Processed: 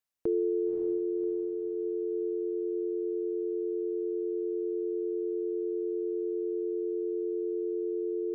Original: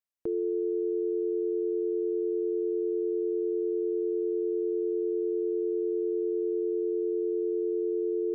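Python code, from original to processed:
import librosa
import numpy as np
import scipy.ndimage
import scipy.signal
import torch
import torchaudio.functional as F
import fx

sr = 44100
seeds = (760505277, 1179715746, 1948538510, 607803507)

y = fx.rider(x, sr, range_db=10, speed_s=0.5)
y = fx.echo_diffused(y, sr, ms=565, feedback_pct=51, wet_db=-5.0)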